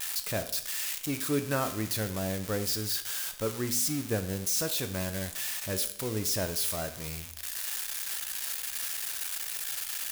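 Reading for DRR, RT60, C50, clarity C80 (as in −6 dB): 7.5 dB, 0.65 s, 12.0 dB, 15.0 dB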